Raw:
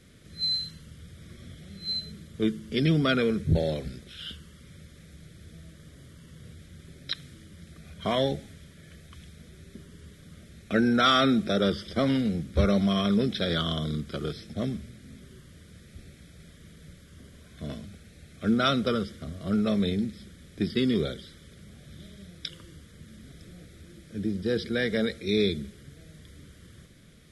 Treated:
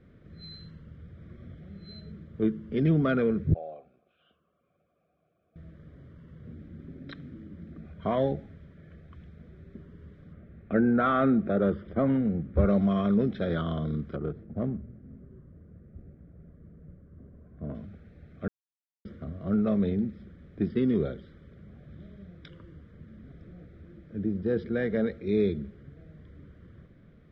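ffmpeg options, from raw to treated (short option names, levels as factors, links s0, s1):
-filter_complex "[0:a]asettb=1/sr,asplit=3[s0][s1][s2];[s0]atrim=end=3.544[s3];[s1]atrim=start=3.54:end=5.56,asetpts=PTS-STARTPTS,afade=t=in:d=0.004:c=qsin,afade=t=out:st=2.016:d=0.004:c=qsin,asplit=3[s4][s5][s6];[s4]bandpass=f=730:t=q:w=8,volume=1[s7];[s5]bandpass=f=1090:t=q:w=8,volume=0.501[s8];[s6]bandpass=f=2440:t=q:w=8,volume=0.355[s9];[s7][s8][s9]amix=inputs=3:normalize=0[s10];[s2]atrim=start=5.556[s11];[s3][s10]acrossfade=d=0.004:c1=hsin:c2=qsin[s12];[s12][s11]acrossfade=d=0.004:c1=qsin:c2=hsin,asettb=1/sr,asplit=3[s13][s14][s15];[s13]atrim=end=6.474[s16];[s14]atrim=start=6.47:end=7.86,asetpts=PTS-STARTPTS,afade=t=in:d=0.004:c=qsin,afade=t=out:st=1.386:d=0.004:c=qsin,equalizer=f=260:w=1.6:g=11.5[s17];[s15]atrim=start=7.856[s18];[s16][s17]acrossfade=d=0.004:c1=hsin:c2=qsin[s19];[s19][s18]acrossfade=d=0.004:c1=qsin:c2=hsin,asettb=1/sr,asplit=3[s20][s21][s22];[s20]atrim=end=10.334[s23];[s21]atrim=start=10.33:end=12.66,asetpts=PTS-STARTPTS,afade=t=in:d=0.004:c=qsin,afade=t=out:st=2.326:d=0.004:c=qsin,lowpass=2500[s24];[s22]atrim=start=12.656[s25];[s23][s24]acrossfade=d=0.004:c1=hsin:c2=qsin[s26];[s26][s25]acrossfade=d=0.004:c1=qsin:c2=hsin,asettb=1/sr,asplit=3[s27][s28][s29];[s27]atrim=end=14.154[s30];[s28]atrim=start=14.15:end=17.75,asetpts=PTS-STARTPTS,afade=t=in:d=0.004:c=qsin,afade=t=out:st=3.596:d=0.004:c=qsin,adynamicsmooth=sensitivity=3:basefreq=980[s31];[s29]atrim=start=17.746[s32];[s30][s31]acrossfade=d=0.004:c1=hsin:c2=qsin[s33];[s33][s32]acrossfade=d=0.004:c1=qsin:c2=hsin,asplit=3[s34][s35][s36];[s34]atrim=end=18.48,asetpts=PTS-STARTPTS,afade=t=out:st=18.476:d=0.004:c=hsin[s37];[s35]atrim=start=18.48:end=19.05,asetpts=PTS-STARTPTS,volume=0[s38];[s36]atrim=start=19.05,asetpts=PTS-STARTPTS,afade=t=in:d=0.004:c=hsin[s39];[s37][s38][s39]concat=n=3:v=0:a=1,lowpass=1300"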